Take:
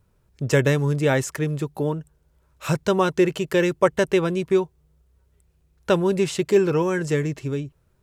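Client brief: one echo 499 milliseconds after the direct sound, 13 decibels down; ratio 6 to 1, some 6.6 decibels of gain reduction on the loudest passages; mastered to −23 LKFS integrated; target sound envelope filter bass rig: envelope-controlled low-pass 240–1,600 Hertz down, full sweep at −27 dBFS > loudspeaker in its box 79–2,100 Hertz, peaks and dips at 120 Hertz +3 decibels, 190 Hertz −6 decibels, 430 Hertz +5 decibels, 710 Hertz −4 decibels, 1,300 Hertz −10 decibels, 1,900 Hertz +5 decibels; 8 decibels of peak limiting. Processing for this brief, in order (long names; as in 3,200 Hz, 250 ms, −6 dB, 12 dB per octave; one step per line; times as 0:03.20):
downward compressor 6 to 1, threshold −20 dBFS
brickwall limiter −18 dBFS
single-tap delay 499 ms −13 dB
envelope-controlled low-pass 240–1,600 Hz down, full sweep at −27 dBFS
loudspeaker in its box 79–2,100 Hz, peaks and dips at 120 Hz +3 dB, 190 Hz −6 dB, 430 Hz +5 dB, 710 Hz −4 dB, 1,300 Hz −10 dB, 1,900 Hz +5 dB
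level +4.5 dB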